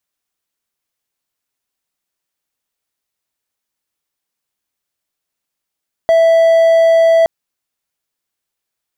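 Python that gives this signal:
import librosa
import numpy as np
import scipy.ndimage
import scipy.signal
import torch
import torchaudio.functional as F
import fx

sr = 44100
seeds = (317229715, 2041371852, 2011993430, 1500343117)

y = 10.0 ** (-4.5 / 20.0) * (1.0 - 4.0 * np.abs(np.mod(659.0 * (np.arange(round(1.17 * sr)) / sr) + 0.25, 1.0) - 0.5))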